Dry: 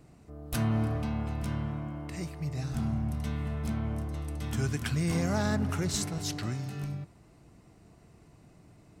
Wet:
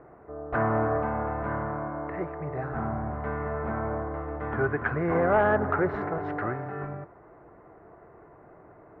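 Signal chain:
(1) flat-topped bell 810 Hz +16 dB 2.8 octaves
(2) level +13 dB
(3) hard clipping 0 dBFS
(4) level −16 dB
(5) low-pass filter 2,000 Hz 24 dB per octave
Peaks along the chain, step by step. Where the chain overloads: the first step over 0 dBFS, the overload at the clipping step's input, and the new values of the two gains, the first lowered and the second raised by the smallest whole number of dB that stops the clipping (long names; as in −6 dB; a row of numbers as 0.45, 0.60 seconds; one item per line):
−7.0, +6.0, 0.0, −16.0, −14.5 dBFS
step 2, 6.0 dB
step 2 +7 dB, step 4 −10 dB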